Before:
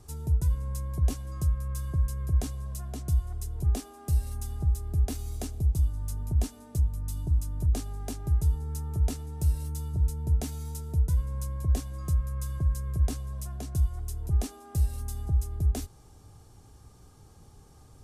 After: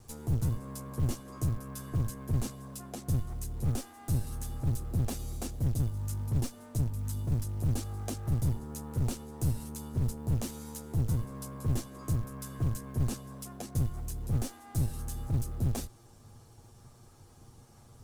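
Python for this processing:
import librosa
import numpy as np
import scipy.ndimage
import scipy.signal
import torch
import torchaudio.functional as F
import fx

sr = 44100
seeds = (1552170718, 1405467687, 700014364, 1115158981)

y = fx.lower_of_two(x, sr, delay_ms=8.5)
y = fx.quant_float(y, sr, bits=4)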